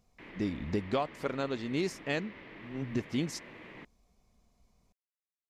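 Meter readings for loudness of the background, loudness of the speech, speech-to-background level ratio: −49.5 LKFS, −35.0 LKFS, 14.5 dB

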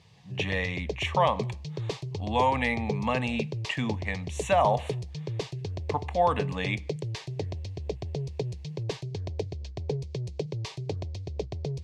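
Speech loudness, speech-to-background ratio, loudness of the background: −29.0 LKFS, 6.0 dB, −35.0 LKFS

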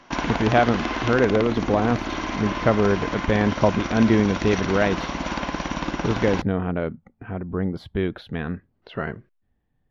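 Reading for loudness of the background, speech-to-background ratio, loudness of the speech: −28.0 LKFS, 4.5 dB, −23.5 LKFS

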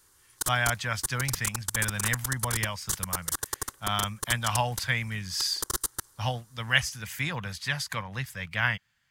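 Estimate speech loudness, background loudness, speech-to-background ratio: −30.0 LKFS, −32.5 LKFS, 2.5 dB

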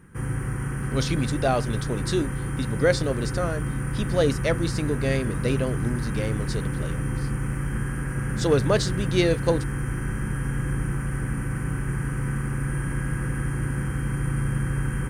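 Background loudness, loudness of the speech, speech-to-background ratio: −28.5 LKFS, −27.0 LKFS, 1.5 dB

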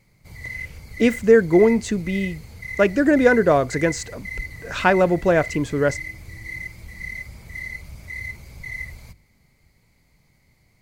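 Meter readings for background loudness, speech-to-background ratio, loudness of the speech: −33.5 LKFS, 14.5 dB, −19.0 LKFS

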